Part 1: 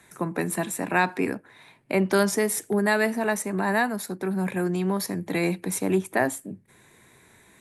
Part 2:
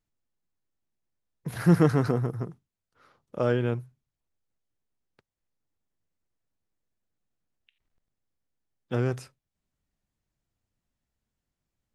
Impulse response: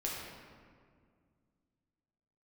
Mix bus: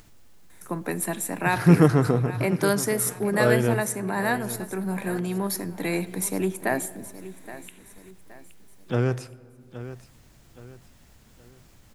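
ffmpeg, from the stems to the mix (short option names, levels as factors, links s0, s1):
-filter_complex "[0:a]highshelf=f=11000:g=11.5,adelay=500,volume=0.708,asplit=3[s0][s1][s2];[s1]volume=0.119[s3];[s2]volume=0.178[s4];[1:a]acompressor=mode=upward:threshold=0.0158:ratio=2.5,volume=1.41,asplit=3[s5][s6][s7];[s6]volume=0.106[s8];[s7]volume=0.211[s9];[2:a]atrim=start_sample=2205[s10];[s3][s8]amix=inputs=2:normalize=0[s11];[s11][s10]afir=irnorm=-1:irlink=0[s12];[s4][s9]amix=inputs=2:normalize=0,aecho=0:1:821|1642|2463|3284|4105:1|0.37|0.137|0.0507|0.0187[s13];[s0][s5][s12][s13]amix=inputs=4:normalize=0"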